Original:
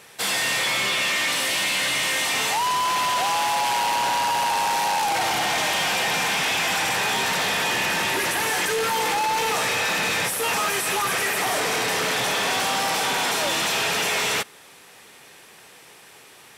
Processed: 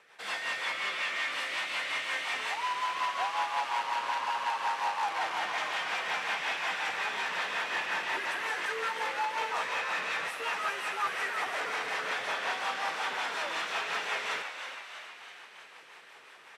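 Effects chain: rotary speaker horn 5.5 Hz; reverse; upward compressor, threshold -37 dBFS; reverse; band-pass 1300 Hz, Q 0.94; frequency-shifting echo 0.324 s, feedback 59%, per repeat +93 Hz, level -8 dB; gain -4 dB

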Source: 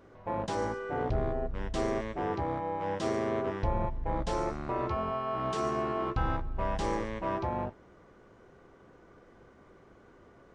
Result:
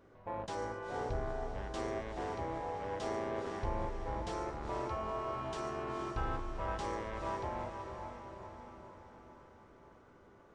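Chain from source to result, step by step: diffused feedback echo 0.47 s, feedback 56%, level -6 dB; dynamic EQ 190 Hz, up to -6 dB, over -47 dBFS, Q 0.94; gain -6 dB

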